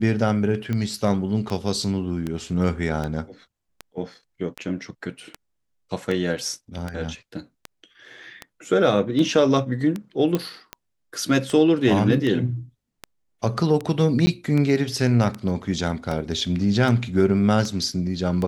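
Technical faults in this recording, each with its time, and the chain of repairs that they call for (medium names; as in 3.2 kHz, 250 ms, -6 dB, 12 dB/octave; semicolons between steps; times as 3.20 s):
tick 78 rpm -15 dBFS
10.35 s: pop -10 dBFS
14.26–14.27 s: dropout 10 ms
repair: de-click; interpolate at 14.26 s, 10 ms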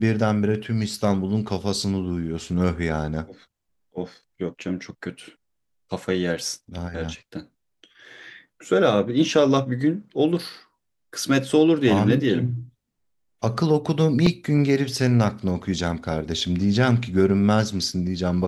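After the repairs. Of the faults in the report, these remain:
nothing left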